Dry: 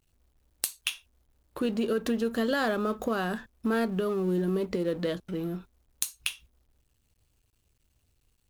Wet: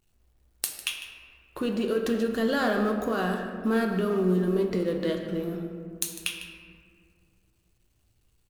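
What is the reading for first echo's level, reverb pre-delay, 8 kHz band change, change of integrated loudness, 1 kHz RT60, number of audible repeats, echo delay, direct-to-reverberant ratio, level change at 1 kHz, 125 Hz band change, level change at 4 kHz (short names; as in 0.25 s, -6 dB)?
-14.5 dB, 3 ms, +1.0 dB, +2.0 dB, 1.9 s, 1, 0.151 s, 2.0 dB, +2.0 dB, +3.5 dB, +1.5 dB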